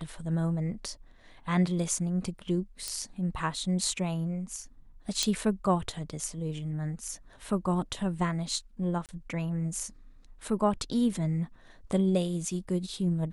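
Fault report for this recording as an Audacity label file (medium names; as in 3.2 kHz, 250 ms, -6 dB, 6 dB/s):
2.880000	2.880000	pop -18 dBFS
5.230000	5.230000	pop -13 dBFS
9.060000	9.090000	dropout 28 ms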